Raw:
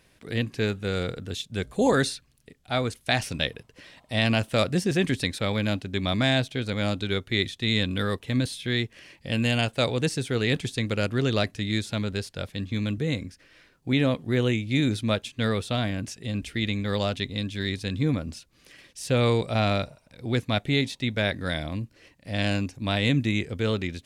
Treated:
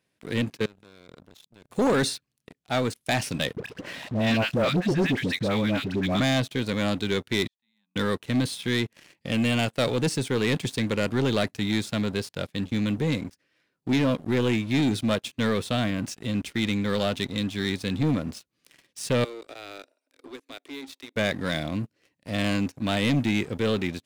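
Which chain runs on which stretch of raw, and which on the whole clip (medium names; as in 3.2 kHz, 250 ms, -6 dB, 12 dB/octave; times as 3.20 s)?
0.55–1.71 s: high-pass 48 Hz 24 dB/octave + level held to a coarse grid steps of 24 dB
3.56–6.20 s: phase dispersion highs, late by 100 ms, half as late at 860 Hz + upward compressor, threshold -26 dBFS + Bessel low-pass 4 kHz
7.47–7.96 s: two resonant band-passes 420 Hz, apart 2.1 oct + differentiator
19.24–21.16 s: peaking EQ 940 Hz -7.5 dB 0.88 oct + compression 3:1, threshold -37 dBFS + rippled Chebyshev high-pass 260 Hz, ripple 3 dB
whole clip: high-pass 170 Hz 12 dB/octave; bass shelf 220 Hz +7 dB; waveshaping leveller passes 3; trim -9 dB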